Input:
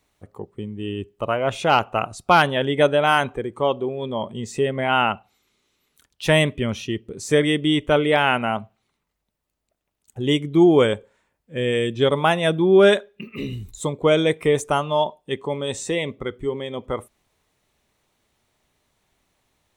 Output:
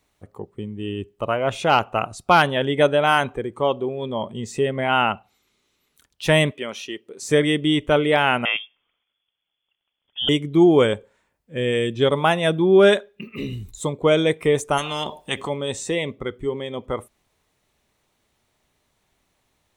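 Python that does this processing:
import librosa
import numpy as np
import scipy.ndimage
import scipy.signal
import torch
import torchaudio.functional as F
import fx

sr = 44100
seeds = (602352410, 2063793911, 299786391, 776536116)

y = fx.highpass(x, sr, hz=450.0, slope=12, at=(6.51, 7.22))
y = fx.freq_invert(y, sr, carrier_hz=3400, at=(8.45, 10.29))
y = fx.spectral_comp(y, sr, ratio=4.0, at=(14.77, 15.48), fade=0.02)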